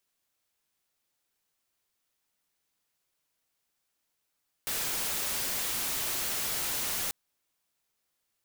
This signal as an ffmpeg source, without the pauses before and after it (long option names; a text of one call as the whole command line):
ffmpeg -f lavfi -i "anoisesrc=color=white:amplitude=0.0435:duration=2.44:sample_rate=44100:seed=1" out.wav